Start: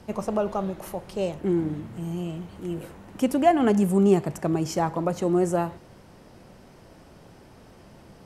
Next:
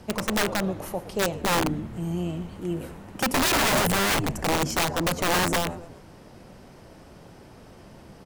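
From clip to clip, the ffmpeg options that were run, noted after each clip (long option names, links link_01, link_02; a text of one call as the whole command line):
ffmpeg -i in.wav -filter_complex "[0:a]asplit=5[link_01][link_02][link_03][link_04][link_05];[link_02]adelay=117,afreqshift=-90,volume=-15dB[link_06];[link_03]adelay=234,afreqshift=-180,volume=-21.9dB[link_07];[link_04]adelay=351,afreqshift=-270,volume=-28.9dB[link_08];[link_05]adelay=468,afreqshift=-360,volume=-35.8dB[link_09];[link_01][link_06][link_07][link_08][link_09]amix=inputs=5:normalize=0,aeval=exprs='(mod(9.44*val(0)+1,2)-1)/9.44':channel_layout=same,volume=2dB" out.wav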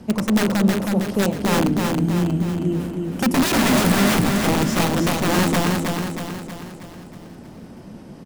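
ffmpeg -i in.wav -filter_complex "[0:a]equalizer=frequency=220:width_type=o:width=1.2:gain=11.5,asplit=2[link_01][link_02];[link_02]aecho=0:1:318|636|954|1272|1590|1908|2226:0.631|0.334|0.177|0.0939|0.0498|0.0264|0.014[link_03];[link_01][link_03]amix=inputs=2:normalize=0" out.wav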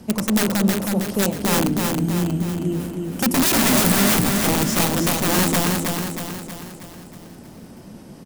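ffmpeg -i in.wav -af "highshelf=frequency=6000:gain=11.5,volume=-1.5dB" out.wav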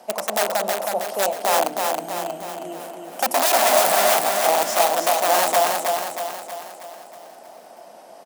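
ffmpeg -i in.wav -af "highpass=frequency=680:width_type=q:width=5.3,volume=-1.5dB" out.wav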